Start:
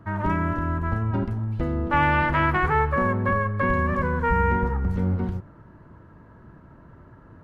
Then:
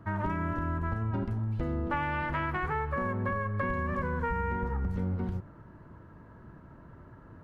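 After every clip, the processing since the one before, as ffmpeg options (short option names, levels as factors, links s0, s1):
-af "acompressor=threshold=0.0562:ratio=6,volume=0.75"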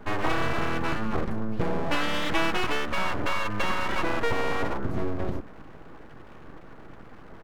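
-af "aecho=1:1:6.2:0.57,aeval=exprs='abs(val(0))':c=same,volume=2.11"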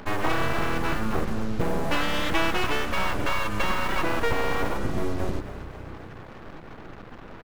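-filter_complex "[0:a]acompressor=mode=upward:threshold=0.00501:ratio=2.5,acrusher=bits=6:mix=0:aa=0.5,asplit=8[s0][s1][s2][s3][s4][s5][s6][s7];[s1]adelay=257,afreqshift=31,volume=0.178[s8];[s2]adelay=514,afreqshift=62,volume=0.11[s9];[s3]adelay=771,afreqshift=93,volume=0.0684[s10];[s4]adelay=1028,afreqshift=124,volume=0.0422[s11];[s5]adelay=1285,afreqshift=155,volume=0.0263[s12];[s6]adelay=1542,afreqshift=186,volume=0.0162[s13];[s7]adelay=1799,afreqshift=217,volume=0.0101[s14];[s0][s8][s9][s10][s11][s12][s13][s14]amix=inputs=8:normalize=0,volume=1.12"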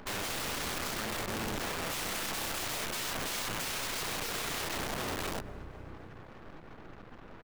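-af "aeval=exprs='(mod(15*val(0)+1,2)-1)/15':c=same,volume=0.422"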